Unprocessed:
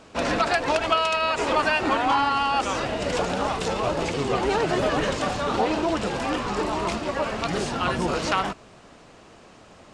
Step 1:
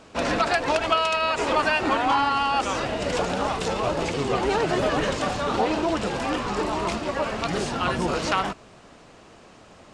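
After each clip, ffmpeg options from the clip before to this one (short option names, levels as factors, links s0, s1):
-af anull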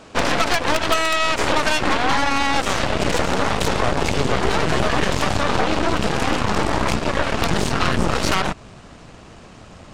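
-af "asubboost=boost=2:cutoff=230,aeval=exprs='0.422*(cos(1*acos(clip(val(0)/0.422,-1,1)))-cos(1*PI/2))+0.0422*(cos(3*acos(clip(val(0)/0.422,-1,1)))-cos(3*PI/2))+0.0841*(cos(8*acos(clip(val(0)/0.422,-1,1)))-cos(8*PI/2))':c=same,acompressor=threshold=0.0708:ratio=3,volume=2.66"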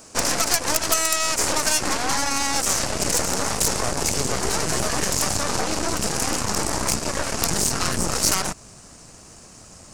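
-af "aexciter=amount=6.1:drive=7.1:freq=5000,volume=0.501"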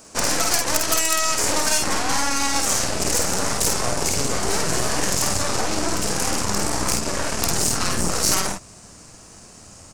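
-af "aecho=1:1:50|60:0.631|0.335,volume=0.891"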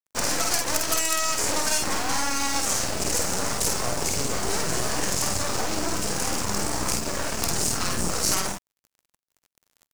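-af "acrusher=bits=4:mix=0:aa=0.5,volume=0.631"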